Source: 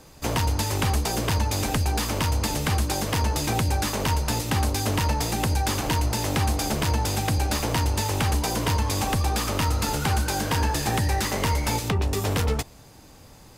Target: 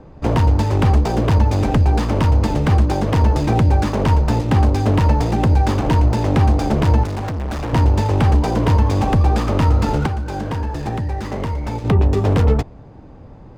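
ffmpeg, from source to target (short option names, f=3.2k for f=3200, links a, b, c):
-filter_complex "[0:a]adynamicsmooth=sensitivity=5.5:basefreq=2.4k,tiltshelf=f=1.3k:g=7,asettb=1/sr,asplit=3[a][b][c];[a]atrim=end=7.034[d];[b]atrim=start=7.03:end=7.73,asetpts=PTS-STARTPTS,afade=t=in:d=0.004:c=qsin,afade=t=out:st=0.696:d=0.004:c=qsin,asoftclip=type=hard:threshold=-25.5dB[e];[c]atrim=start=7.726[f];[d][e]acrossfade=d=0.004:c1=hsin:c2=qsin[g];[g][f]acrossfade=d=0.004:c1=qsin:c2=hsin,asettb=1/sr,asplit=3[h][i][j];[h]atrim=end=10.064[k];[i]atrim=start=10.06:end=11.85,asetpts=PTS-STARTPTS,afade=t=in:d=0.004:c=qsin,afade=t=out:st=1.786:d=0.004:c=qsin,acompressor=threshold=-26dB:ratio=3[l];[j]atrim=start=11.846[m];[k][l]acrossfade=d=0.004:c1=hsin:c2=qsin[n];[n][m]acrossfade=d=0.004:c1=qsin:c2=hsin,volume=3.5dB"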